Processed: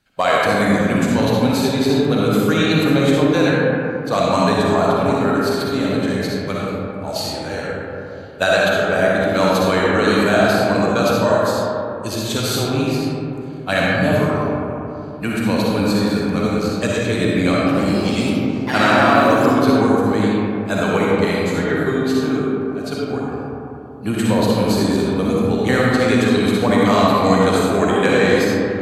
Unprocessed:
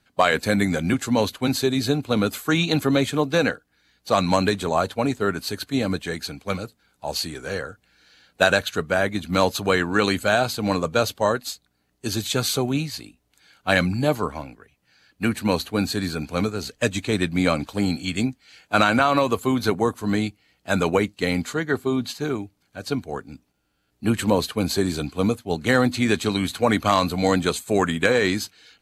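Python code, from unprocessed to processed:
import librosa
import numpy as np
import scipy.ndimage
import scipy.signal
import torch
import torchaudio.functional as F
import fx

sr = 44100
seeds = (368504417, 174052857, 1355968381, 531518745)

y = fx.echo_pitch(x, sr, ms=146, semitones=3, count=3, db_per_echo=-6.0, at=(17.52, 19.65))
y = fx.rev_freeverb(y, sr, rt60_s=3.2, hf_ratio=0.3, predelay_ms=20, drr_db=-5.5)
y = y * librosa.db_to_amplitude(-1.5)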